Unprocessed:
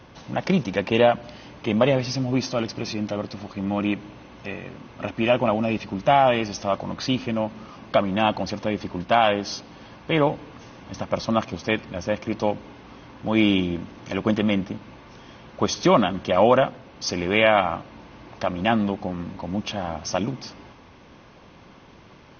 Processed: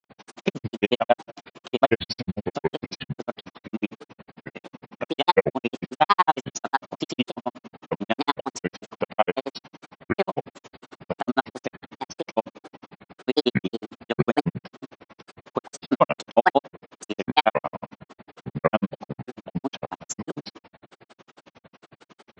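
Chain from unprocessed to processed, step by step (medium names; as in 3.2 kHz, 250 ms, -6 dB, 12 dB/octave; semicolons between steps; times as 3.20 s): high-pass 190 Hz 12 dB/octave; granulator 48 ms, grains 11 per s, pitch spread up and down by 7 st; trim +3.5 dB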